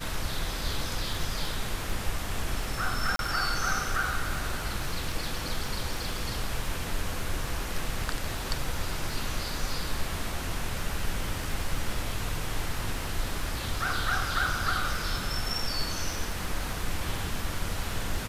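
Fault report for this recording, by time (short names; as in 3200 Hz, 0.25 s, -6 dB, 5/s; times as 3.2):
crackle 36/s -35 dBFS
3.16–3.19 gap 32 ms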